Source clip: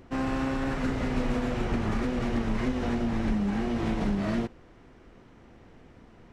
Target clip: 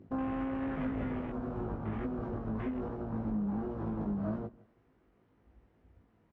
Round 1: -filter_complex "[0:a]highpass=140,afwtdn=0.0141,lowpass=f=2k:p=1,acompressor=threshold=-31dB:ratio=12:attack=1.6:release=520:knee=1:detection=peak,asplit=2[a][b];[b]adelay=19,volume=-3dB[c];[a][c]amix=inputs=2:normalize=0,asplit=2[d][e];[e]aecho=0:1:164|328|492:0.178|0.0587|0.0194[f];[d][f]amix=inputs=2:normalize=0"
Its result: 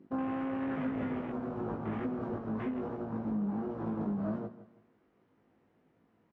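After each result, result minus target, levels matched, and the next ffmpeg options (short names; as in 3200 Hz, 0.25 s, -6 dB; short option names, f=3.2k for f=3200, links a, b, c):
echo-to-direct +8 dB; 125 Hz band -3.0 dB
-filter_complex "[0:a]highpass=140,afwtdn=0.0141,lowpass=f=2k:p=1,acompressor=threshold=-31dB:ratio=12:attack=1.6:release=520:knee=1:detection=peak,asplit=2[a][b];[b]adelay=19,volume=-3dB[c];[a][c]amix=inputs=2:normalize=0,asplit=2[d][e];[e]aecho=0:1:164|328:0.0708|0.0234[f];[d][f]amix=inputs=2:normalize=0"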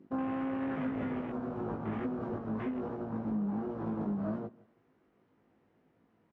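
125 Hz band -3.0 dB
-filter_complex "[0:a]highpass=47,afwtdn=0.0141,lowpass=f=2k:p=1,acompressor=threshold=-31dB:ratio=12:attack=1.6:release=520:knee=1:detection=peak,asplit=2[a][b];[b]adelay=19,volume=-3dB[c];[a][c]amix=inputs=2:normalize=0,asplit=2[d][e];[e]aecho=0:1:164|328:0.0708|0.0234[f];[d][f]amix=inputs=2:normalize=0"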